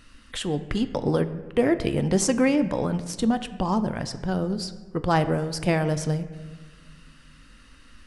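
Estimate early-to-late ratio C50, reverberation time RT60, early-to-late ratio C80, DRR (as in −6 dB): 13.0 dB, 1.5 s, 14.0 dB, 10.0 dB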